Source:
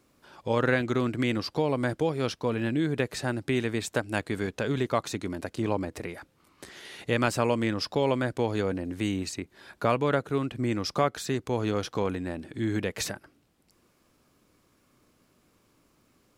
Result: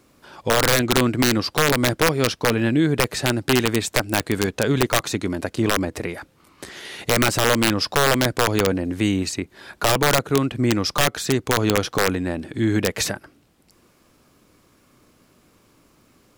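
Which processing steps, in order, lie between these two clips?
wrapped overs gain 17 dB; gain +8.5 dB

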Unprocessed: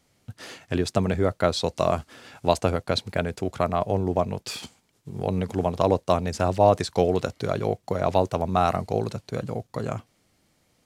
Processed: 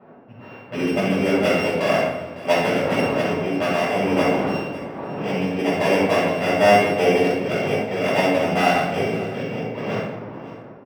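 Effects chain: sample sorter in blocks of 16 samples; wind noise 630 Hz -37 dBFS; low-pass opened by the level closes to 1900 Hz, open at -19 dBFS; HPF 220 Hz 12 dB/oct; high shelf 4200 Hz -10 dB; echo 0.554 s -16.5 dB; shoebox room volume 450 m³, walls mixed, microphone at 6.5 m; decimation joined by straight lines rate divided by 2×; gain -8.5 dB

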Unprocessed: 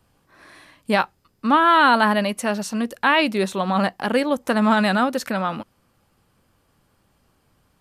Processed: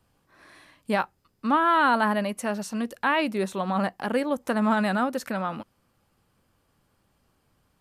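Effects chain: dynamic EQ 3800 Hz, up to -6 dB, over -36 dBFS, Q 0.93; gain -5 dB

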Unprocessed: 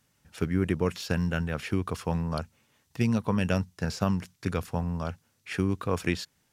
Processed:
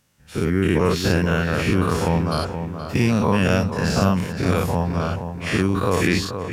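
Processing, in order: spectral dilation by 0.12 s; AGC gain up to 4.5 dB; darkening echo 0.473 s, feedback 40%, low-pass 2300 Hz, level -8 dB

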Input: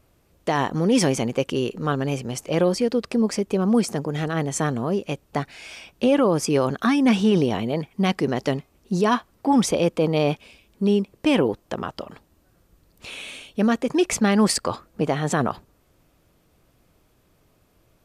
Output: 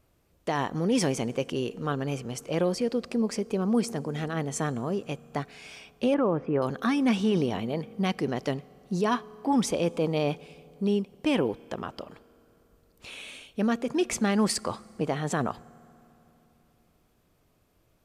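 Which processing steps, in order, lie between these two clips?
6.14–6.62 LPF 1900 Hz 24 dB/oct; on a send: reverb RT60 3.4 s, pre-delay 3 ms, DRR 21 dB; on the sum: gain -6 dB

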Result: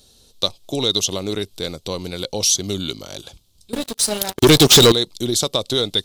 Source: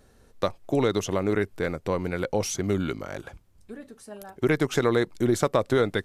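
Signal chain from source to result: resonant high shelf 2600 Hz +12.5 dB, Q 3; 3.73–4.92 sample leveller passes 5

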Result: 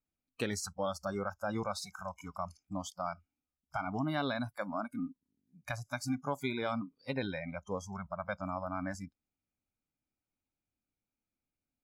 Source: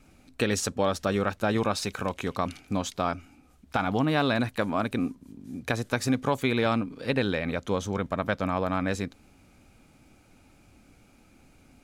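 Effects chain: spectral noise reduction 28 dB; gain -8.5 dB

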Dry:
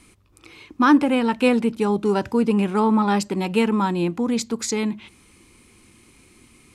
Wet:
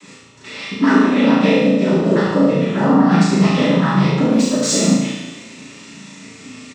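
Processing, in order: comb 4.4 ms, depth 51%; compressor 6:1, threshold -27 dBFS, peak gain reduction 16 dB; noise vocoder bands 12; 4.2–4.78 backlash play -47 dBFS; on a send: flutter echo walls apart 6.1 m, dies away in 0.78 s; on the sum: two-slope reverb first 0.64 s, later 2.1 s, DRR -5.5 dB; gain +6.5 dB

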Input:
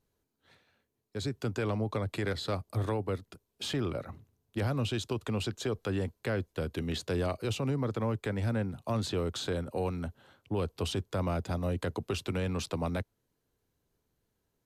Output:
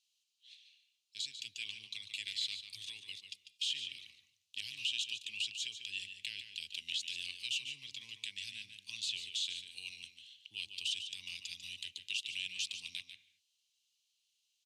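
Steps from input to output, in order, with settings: elliptic high-pass 2800 Hz, stop band 50 dB; dynamic EQ 4700 Hz, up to -6 dB, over -56 dBFS, Q 1.5; limiter -37 dBFS, peak gain reduction 7.5 dB; air absorption 86 m; outdoor echo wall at 25 m, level -8 dB; reverb, pre-delay 0.123 s, DRR 15 dB; gain +14 dB

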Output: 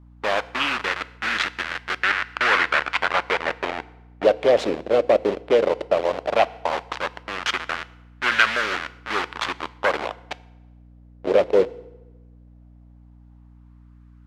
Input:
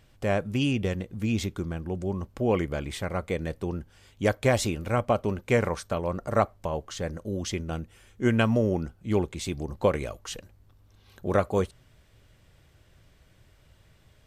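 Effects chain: level-crossing sampler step -26 dBFS; 1.96–4.24 bell 1900 Hz +9 dB 1.6 oct; sine folder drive 9 dB, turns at -9 dBFS; weighting filter D; added noise white -57 dBFS; LFO band-pass sine 0.15 Hz 500–1500 Hz; FDN reverb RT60 1.1 s, high-frequency decay 0.95×, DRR 15 dB; harmonic-percussive split percussive +4 dB; hum 60 Hz, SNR 24 dB; mismatched tape noise reduction decoder only

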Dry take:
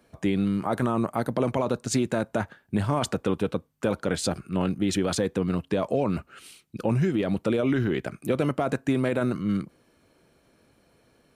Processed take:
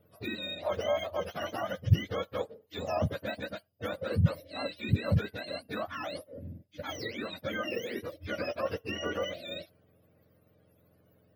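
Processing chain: spectrum mirrored in octaves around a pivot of 860 Hz; EQ curve 370 Hz 0 dB, 590 Hz +9 dB, 880 Hz -5 dB, 5100 Hz -11 dB, 7600 Hz -26 dB, 12000 Hz +10 dB; gain -2.5 dB

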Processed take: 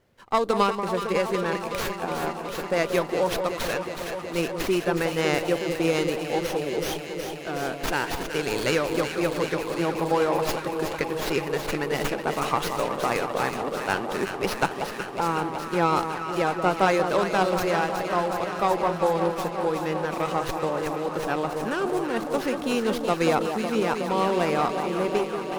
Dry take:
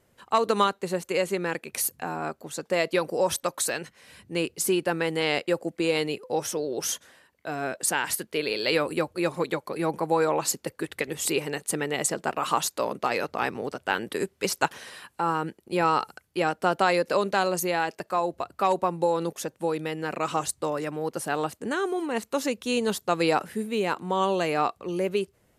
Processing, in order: echo with dull and thin repeats by turns 0.185 s, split 1100 Hz, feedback 89%, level -6.5 dB; running maximum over 5 samples

